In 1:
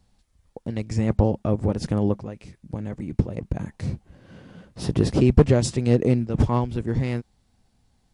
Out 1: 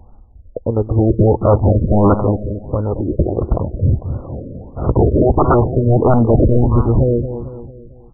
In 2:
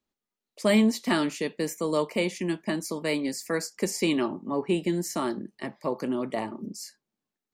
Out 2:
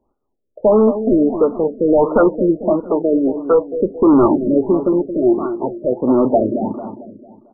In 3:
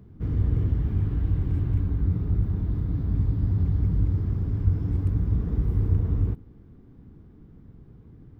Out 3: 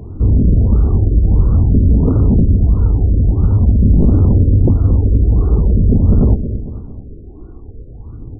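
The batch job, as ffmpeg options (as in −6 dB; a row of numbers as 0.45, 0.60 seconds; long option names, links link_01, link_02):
-filter_complex "[0:a]equalizer=frequency=170:width_type=o:width=0.85:gain=-11,asplit=2[link_01][link_02];[link_02]acrusher=bits=3:mode=log:mix=0:aa=0.000001,volume=-9.5dB[link_03];[link_01][link_03]amix=inputs=2:normalize=0,aphaser=in_gain=1:out_gain=1:delay=2.8:decay=0.47:speed=0.47:type=sinusoidal,aeval=exprs='0.75*sin(PI/2*5.01*val(0)/0.75)':channel_layout=same,asplit=2[link_04][link_05];[link_05]adelay=224,lowpass=frequency=1500:poles=1,volume=-10dB,asplit=2[link_06][link_07];[link_07]adelay=224,lowpass=frequency=1500:poles=1,volume=0.48,asplit=2[link_08][link_09];[link_09]adelay=224,lowpass=frequency=1500:poles=1,volume=0.48,asplit=2[link_10][link_11];[link_11]adelay=224,lowpass=frequency=1500:poles=1,volume=0.48,asplit=2[link_12][link_13];[link_13]adelay=224,lowpass=frequency=1500:poles=1,volume=0.48[link_14];[link_06][link_08][link_10][link_12][link_14]amix=inputs=5:normalize=0[link_15];[link_04][link_15]amix=inputs=2:normalize=0,afftfilt=real='re*lt(b*sr/1024,610*pow(1500/610,0.5+0.5*sin(2*PI*1.5*pts/sr)))':imag='im*lt(b*sr/1024,610*pow(1500/610,0.5+0.5*sin(2*PI*1.5*pts/sr)))':win_size=1024:overlap=0.75,volume=-4dB"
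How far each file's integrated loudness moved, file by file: +8.0, +12.5, +13.0 LU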